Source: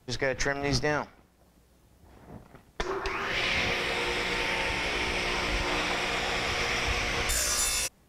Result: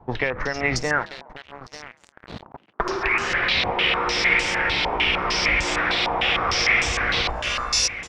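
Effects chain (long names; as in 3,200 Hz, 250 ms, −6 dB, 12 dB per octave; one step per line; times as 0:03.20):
downward compressor 4 to 1, threshold −32 dBFS, peak gain reduction 8.5 dB
repeating echo 892 ms, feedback 27%, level −14 dB
0:00.83–0:02.90: centre clipping without the shift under −44 dBFS
echo with shifted repeats 138 ms, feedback 46%, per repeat +53 Hz, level −20 dB
low-pass on a step sequencer 6.6 Hz 910–7,200 Hz
level +9 dB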